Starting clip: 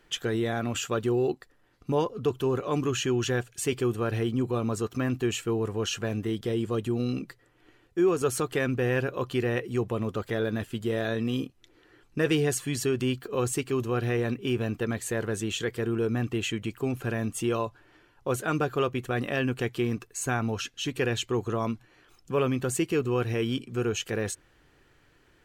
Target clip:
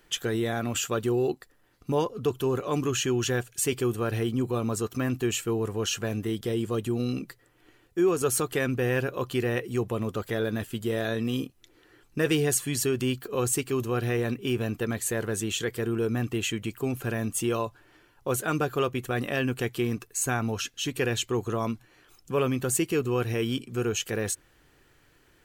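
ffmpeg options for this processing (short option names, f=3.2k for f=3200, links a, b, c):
-af "highshelf=f=8.3k:g=11.5"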